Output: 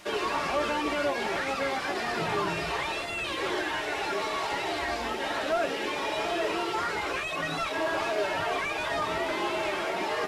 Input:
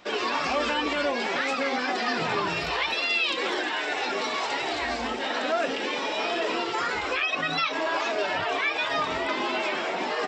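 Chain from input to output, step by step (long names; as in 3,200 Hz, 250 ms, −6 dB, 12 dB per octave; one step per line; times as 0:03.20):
linear delta modulator 64 kbit/s, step −43 dBFS
notch comb filter 250 Hz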